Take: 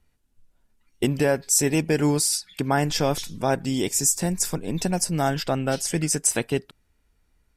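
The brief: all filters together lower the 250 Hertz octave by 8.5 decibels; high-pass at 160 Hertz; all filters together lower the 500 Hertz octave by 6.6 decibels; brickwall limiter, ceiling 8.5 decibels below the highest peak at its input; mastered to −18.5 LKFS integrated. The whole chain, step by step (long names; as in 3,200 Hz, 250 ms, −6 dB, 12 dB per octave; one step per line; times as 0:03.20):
high-pass filter 160 Hz
parametric band 250 Hz −8.5 dB
parametric band 500 Hz −6 dB
level +9.5 dB
brickwall limiter −5.5 dBFS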